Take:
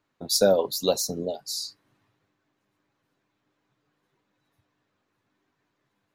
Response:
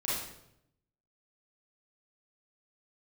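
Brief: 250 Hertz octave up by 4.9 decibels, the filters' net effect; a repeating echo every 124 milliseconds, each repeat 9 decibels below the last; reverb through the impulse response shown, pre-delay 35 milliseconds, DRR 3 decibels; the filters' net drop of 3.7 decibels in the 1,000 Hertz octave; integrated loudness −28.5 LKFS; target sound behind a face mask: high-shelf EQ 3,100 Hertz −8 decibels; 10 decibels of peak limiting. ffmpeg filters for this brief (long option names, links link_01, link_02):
-filter_complex "[0:a]equalizer=frequency=250:width_type=o:gain=7,equalizer=frequency=1000:width_type=o:gain=-6,alimiter=limit=-16.5dB:level=0:latency=1,aecho=1:1:124|248|372|496:0.355|0.124|0.0435|0.0152,asplit=2[link_01][link_02];[1:a]atrim=start_sample=2205,adelay=35[link_03];[link_02][link_03]afir=irnorm=-1:irlink=0,volume=-9dB[link_04];[link_01][link_04]amix=inputs=2:normalize=0,highshelf=frequency=3100:gain=-8,volume=-0.5dB"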